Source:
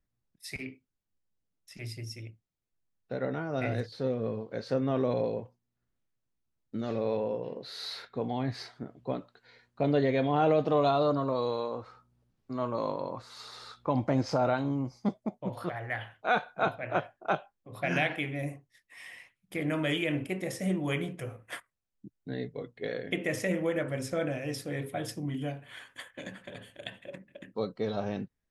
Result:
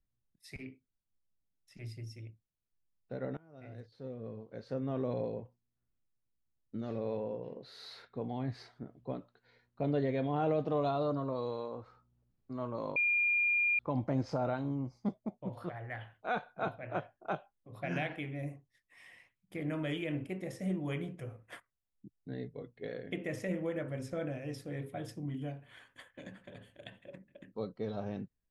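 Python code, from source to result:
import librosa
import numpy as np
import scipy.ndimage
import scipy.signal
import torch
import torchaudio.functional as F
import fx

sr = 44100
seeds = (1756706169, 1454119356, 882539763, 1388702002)

y = fx.edit(x, sr, fx.fade_in_from(start_s=3.37, length_s=1.81, floor_db=-24.0),
    fx.bleep(start_s=12.96, length_s=0.83, hz=2410.0, db=-16.5), tone=tone)
y = fx.tilt_eq(y, sr, slope=-1.5)
y = F.gain(torch.from_numpy(y), -8.0).numpy()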